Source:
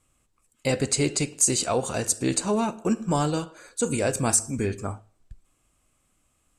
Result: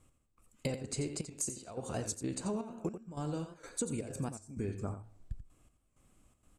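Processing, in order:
tilt shelving filter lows +4.5 dB, about 760 Hz
downward compressor 12 to 1, threshold −34 dBFS, peak gain reduction 19 dB
gate pattern "x...xxxx.xxxx.x" 161 BPM −12 dB
on a send: single-tap delay 87 ms −10 dB
on the sum: wow of a warped record 78 rpm, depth 100 cents
level +1 dB

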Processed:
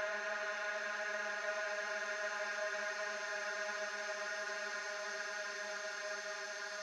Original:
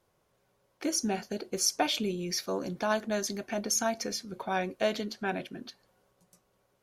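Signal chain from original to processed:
four-pole ladder band-pass 1,500 Hz, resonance 35%
extreme stretch with random phases 45×, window 0.50 s, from 0:03.13
level +11 dB

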